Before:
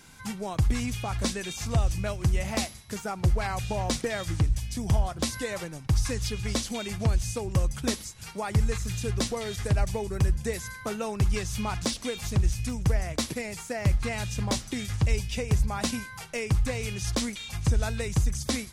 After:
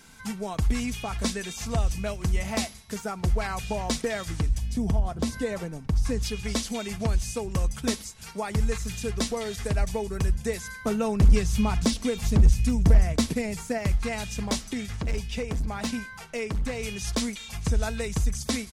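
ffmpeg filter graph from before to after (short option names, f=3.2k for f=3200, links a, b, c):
-filter_complex "[0:a]asettb=1/sr,asplit=3[a][b][c];[a]atrim=end=4.584[d];[b]atrim=start=4.58:end=6.23,asetpts=PTS-STARTPTS,afade=t=in:d=0.004:c=qsin,afade=t=out:st=1.646:d=0.004:c=qsin,tiltshelf=f=870:g=5.5,acompressor=threshold=-22dB:ratio=2:attack=3.2:release=140:knee=1:detection=peak[e];[c]atrim=start=6.226[f];[d][e]acrossfade=d=0.004:c1=hsin:c2=qsin[g];[g][f]acrossfade=d=0.004:c1=qsin:c2=hsin,asettb=1/sr,asplit=3[h][i][j];[h]atrim=end=10.844[k];[i]atrim=start=10.84:end=13.78,asetpts=PTS-STARTPTS,afade=t=in:d=0.004:c=qsin,afade=t=out:st=2.936:d=0.004:c=qsin,lowshelf=f=300:g=10,asoftclip=type=hard:threshold=-11dB[l];[j]atrim=start=13.776[m];[k][l]acrossfade=d=0.004:c1=hsin:c2=qsin[n];[n][m]acrossfade=d=0.004:c1=qsin:c2=hsin,asettb=1/sr,asplit=3[o][p][q];[o]atrim=end=14.734[r];[p]atrim=start=14.73:end=16.83,asetpts=PTS-STARTPTS,afade=t=in:d=0.004:c=qsin,afade=t=out:st=2.096:d=0.004:c=qsin,highshelf=f=5.5k:g=-7,asoftclip=type=hard:threshold=-24dB[s];[q]atrim=start=16.826[t];[r][s]acrossfade=d=0.004:c1=hsin:c2=qsin[u];[u][t]acrossfade=d=0.004:c1=qsin:c2=hsin,equalizer=f=120:t=o:w=0.34:g=-6,aecho=1:1:4.5:0.33"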